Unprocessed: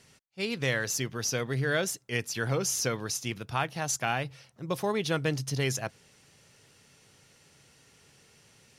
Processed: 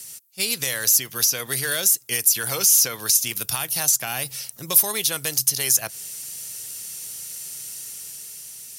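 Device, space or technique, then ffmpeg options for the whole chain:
FM broadcast chain: -filter_complex "[0:a]highpass=50,dynaudnorm=framelen=200:gausssize=9:maxgain=4dB,acrossover=split=520|1600|3900[link_01][link_02][link_03][link_04];[link_01]acompressor=threshold=-36dB:ratio=4[link_05];[link_02]acompressor=threshold=-30dB:ratio=4[link_06];[link_03]acompressor=threshold=-38dB:ratio=4[link_07];[link_04]acompressor=threshold=-38dB:ratio=4[link_08];[link_05][link_06][link_07][link_08]amix=inputs=4:normalize=0,aemphasis=mode=production:type=75fm,alimiter=limit=-19dB:level=0:latency=1:release=307,asoftclip=type=hard:threshold=-22.5dB,lowpass=frequency=15000:width=0.5412,lowpass=frequency=15000:width=1.3066,aemphasis=mode=production:type=75fm,volume=2.5dB"

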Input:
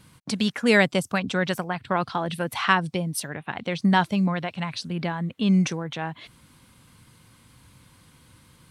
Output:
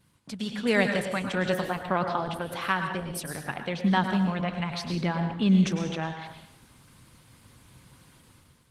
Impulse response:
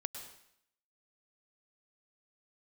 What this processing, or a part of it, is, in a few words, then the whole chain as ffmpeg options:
speakerphone in a meeting room: -filter_complex "[1:a]atrim=start_sample=2205[link_01];[0:a][link_01]afir=irnorm=-1:irlink=0,dynaudnorm=framelen=140:gausssize=7:maxgain=10.5dB,volume=-8.5dB" -ar 48000 -c:a libopus -b:a 16k

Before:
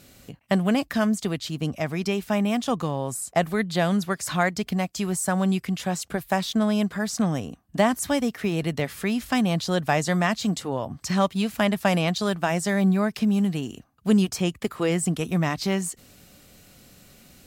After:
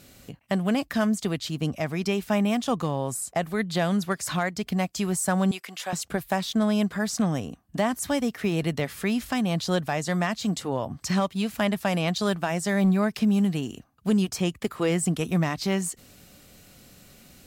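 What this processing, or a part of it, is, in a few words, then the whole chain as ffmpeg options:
limiter into clipper: -filter_complex "[0:a]asettb=1/sr,asplit=3[link_01][link_02][link_03];[link_01]atrim=end=5.514[link_04];[link_02]atrim=start=5.51:end=5.93,asetpts=PTS-STARTPTS,afade=type=in:duration=0.004:curve=qsin,afade=type=out:start_time=0.416:duration=0.004:curve=qsin,highpass=600[link_05];[link_03]atrim=start=5.926[link_06];[link_04][link_05]acrossfade=duration=0.004:curve1=hsin:curve2=qsin[link_07];[link_07][link_06]acrossfade=duration=0.004:curve1=qsin:curve2=hsin,alimiter=limit=-14dB:level=0:latency=1:release=402,asoftclip=type=hard:threshold=-15.5dB"

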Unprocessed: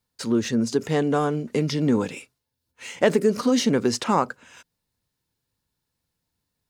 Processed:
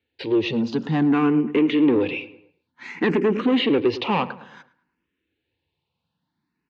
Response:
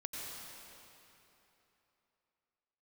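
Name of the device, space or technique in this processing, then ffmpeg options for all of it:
barber-pole phaser into a guitar amplifier: -filter_complex "[0:a]asplit=2[link_01][link_02];[link_02]afreqshift=0.56[link_03];[link_01][link_03]amix=inputs=2:normalize=1,asoftclip=type=tanh:threshold=-23dB,highpass=97,equalizer=frequency=120:width_type=q:width=4:gain=-7,equalizer=frequency=320:width_type=q:width=4:gain=6,equalizer=frequency=630:width_type=q:width=4:gain=-7,equalizer=frequency=1300:width_type=q:width=4:gain=-5,equalizer=frequency=2600:width_type=q:width=4:gain=5,lowpass=frequency=3500:width=0.5412,lowpass=frequency=3500:width=1.3066,bandreject=frequency=5200:width=21,asplit=2[link_04][link_05];[link_05]adelay=108,lowpass=frequency=2000:poles=1,volume=-15dB,asplit=2[link_06][link_07];[link_07]adelay=108,lowpass=frequency=2000:poles=1,volume=0.46,asplit=2[link_08][link_09];[link_09]adelay=108,lowpass=frequency=2000:poles=1,volume=0.46,asplit=2[link_10][link_11];[link_11]adelay=108,lowpass=frequency=2000:poles=1,volume=0.46[link_12];[link_04][link_06][link_08][link_10][link_12]amix=inputs=5:normalize=0,volume=8dB"

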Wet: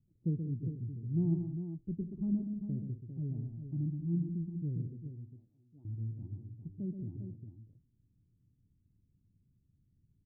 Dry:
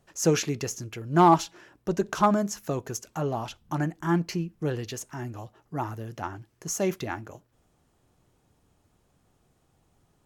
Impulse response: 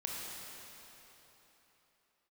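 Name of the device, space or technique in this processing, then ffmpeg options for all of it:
the neighbour's flat through the wall: -filter_complex "[0:a]asettb=1/sr,asplit=3[link_01][link_02][link_03];[link_01]atrim=end=5.104[link_04];[link_02]atrim=start=5.1:end=5.85,asetpts=PTS-STARTPTS,afade=type=in:duration=0.004:curve=qsin,afade=type=out:start_time=0.746:duration=0.004:curve=qsin,highpass=frequency=1400:poles=1[link_05];[link_03]atrim=start=5.846[link_06];[link_04][link_05]acrossfade=duration=0.004:curve1=hsin:curve2=qsin[link_07];[link_07][link_06]acrossfade=duration=0.004:curve1=qsin:curve2=hsin,lowpass=frequency=250:width=0.5412,lowpass=frequency=250:width=1.3066,equalizer=frequency=110:width_type=o:width=0.59:gain=5.5,aecho=1:1:127|189|401:0.447|0.237|0.376,volume=-6.5dB"

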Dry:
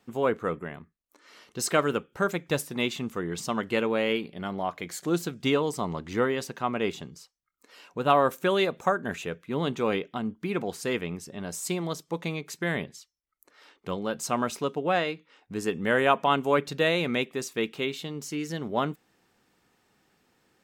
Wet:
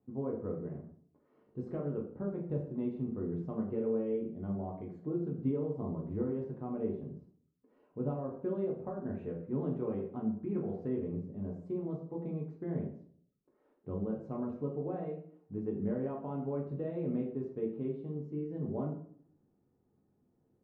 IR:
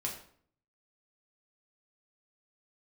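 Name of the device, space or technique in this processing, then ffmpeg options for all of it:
television next door: -filter_complex "[0:a]asettb=1/sr,asplit=3[link_01][link_02][link_03];[link_01]atrim=end=8.984[link_04];[link_02]atrim=start=8.98:end=10.88,asetpts=PTS-STARTPTS,afade=type=in:duration=0.004:curve=qsin,afade=type=out:start_time=1.896:duration=0.004:curve=qsin,equalizer=frequency=2100:width=0.37:gain=5[link_05];[link_03]atrim=start=10.876[link_06];[link_04][link_05]acrossfade=duration=0.004:curve1=hsin:curve2=qsin[link_07];[link_07][link_06]acrossfade=duration=0.004:curve1=qsin:curve2=hsin,acompressor=threshold=-25dB:ratio=5,lowpass=420[link_08];[1:a]atrim=start_sample=2205[link_09];[link_08][link_09]afir=irnorm=-1:irlink=0,volume=-4dB"

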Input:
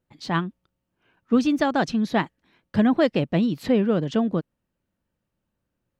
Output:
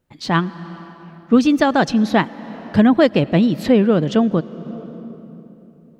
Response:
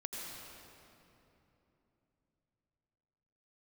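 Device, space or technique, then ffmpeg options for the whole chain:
ducked reverb: -filter_complex "[0:a]asplit=3[link_01][link_02][link_03];[1:a]atrim=start_sample=2205[link_04];[link_02][link_04]afir=irnorm=-1:irlink=0[link_05];[link_03]apad=whole_len=264418[link_06];[link_05][link_06]sidechaincompress=threshold=-26dB:ratio=6:attack=11:release=577,volume=-9.5dB[link_07];[link_01][link_07]amix=inputs=2:normalize=0,volume=6dB"

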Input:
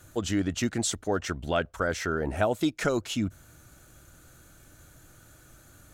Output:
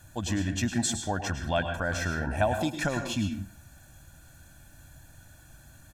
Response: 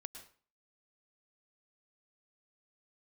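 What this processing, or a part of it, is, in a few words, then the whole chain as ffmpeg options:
microphone above a desk: -filter_complex "[0:a]aecho=1:1:1.2:0.73[link_01];[1:a]atrim=start_sample=2205[link_02];[link_01][link_02]afir=irnorm=-1:irlink=0,volume=3dB"

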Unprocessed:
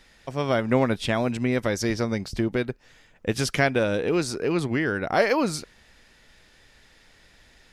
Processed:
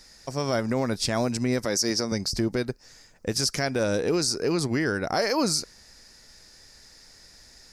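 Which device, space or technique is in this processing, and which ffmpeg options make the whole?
over-bright horn tweeter: -filter_complex "[0:a]highshelf=frequency=4000:width_type=q:width=3:gain=7.5,alimiter=limit=-14dB:level=0:latency=1:release=73,asettb=1/sr,asplit=3[link_01][link_02][link_03];[link_01]atrim=end=1.654[link_04];[link_02]atrim=start=1.65:end=2.12,asetpts=PTS-STARTPTS,afade=type=in:duration=0.004:curve=qsin,afade=type=out:start_time=0.466:duration=0.004:curve=qsin,highpass=170[link_05];[link_03]atrim=start=2.116[link_06];[link_04][link_05]acrossfade=duration=0.004:curve1=hsin:curve2=qsin[link_07];[link_07][link_06]acrossfade=duration=0.004:curve1=qsin:curve2=hsin"

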